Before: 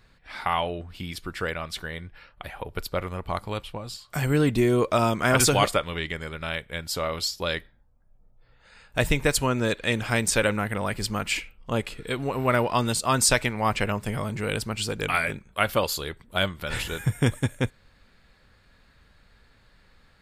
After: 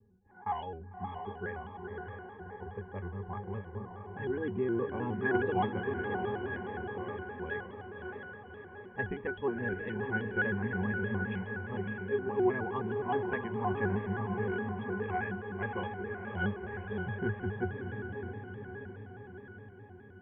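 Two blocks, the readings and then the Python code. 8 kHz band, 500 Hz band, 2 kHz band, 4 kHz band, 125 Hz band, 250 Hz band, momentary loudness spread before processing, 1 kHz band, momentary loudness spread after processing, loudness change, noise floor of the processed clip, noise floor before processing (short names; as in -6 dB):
under -40 dB, -7.0 dB, -7.5 dB, -24.5 dB, -9.5 dB, -7.0 dB, 13 LU, -8.5 dB, 14 LU, -9.5 dB, -51 dBFS, -60 dBFS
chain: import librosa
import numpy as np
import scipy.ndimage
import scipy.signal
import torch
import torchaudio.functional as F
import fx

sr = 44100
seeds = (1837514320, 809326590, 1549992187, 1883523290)

p1 = fx.law_mismatch(x, sr, coded='mu')
p2 = fx.notch(p1, sr, hz=1300.0, q=7.7)
p3 = fx.env_lowpass(p2, sr, base_hz=370.0, full_db=-19.0)
p4 = scipy.signal.sosfilt(scipy.signal.ellip(4, 1.0, 40, 2700.0, 'lowpass', fs=sr, output='sos'), p3)
p5 = fx.low_shelf(p4, sr, hz=450.0, db=-10.0)
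p6 = fx.octave_resonator(p5, sr, note='G', decay_s=0.2)
p7 = fx.small_body(p6, sr, hz=(310.0, 1100.0), ring_ms=30, db=11)
p8 = p7 + fx.echo_diffused(p7, sr, ms=611, feedback_pct=61, wet_db=-5, dry=0)
p9 = fx.vibrato_shape(p8, sr, shape='square', rate_hz=4.8, depth_cents=100.0)
y = F.gain(torch.from_numpy(p9), 7.5).numpy()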